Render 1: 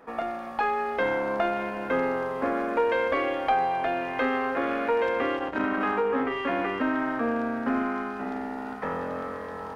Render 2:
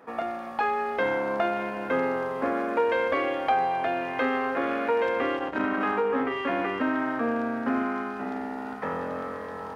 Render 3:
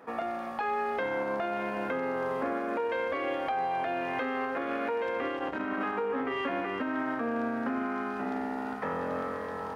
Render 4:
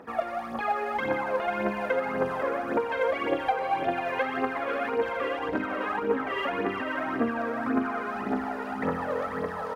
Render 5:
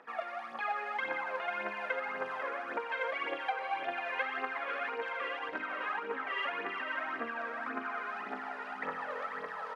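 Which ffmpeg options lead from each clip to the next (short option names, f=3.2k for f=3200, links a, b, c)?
-af "highpass=71"
-af "alimiter=limit=-22.5dB:level=0:latency=1:release=229"
-filter_complex "[0:a]aphaser=in_gain=1:out_gain=1:delay=2.2:decay=0.68:speed=1.8:type=triangular,asplit=2[a][b];[b]aecho=0:1:493:0.376[c];[a][c]amix=inputs=2:normalize=0"
-af "bandpass=f=2.2k:t=q:w=0.75:csg=0,volume=-2dB"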